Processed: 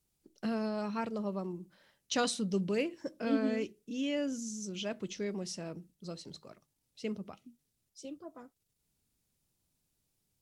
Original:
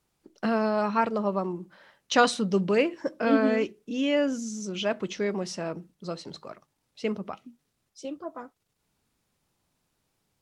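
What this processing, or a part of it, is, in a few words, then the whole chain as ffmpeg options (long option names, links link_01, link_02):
smiley-face EQ: -af "lowshelf=frequency=120:gain=5.5,equalizer=frequency=1100:width_type=o:width=2.1:gain=-7.5,highshelf=frequency=6100:gain=8.5,volume=-7dB"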